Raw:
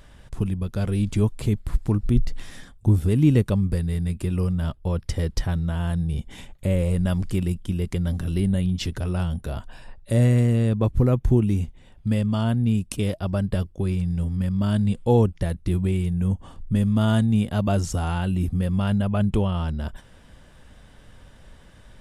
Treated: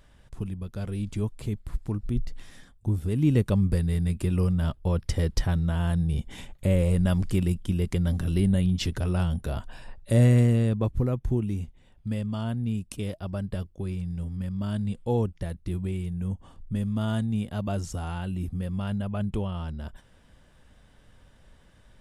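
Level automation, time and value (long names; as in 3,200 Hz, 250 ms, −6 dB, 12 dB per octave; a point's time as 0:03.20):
0:03.00 −8 dB
0:03.62 −0.5 dB
0:10.42 −0.5 dB
0:11.14 −7.5 dB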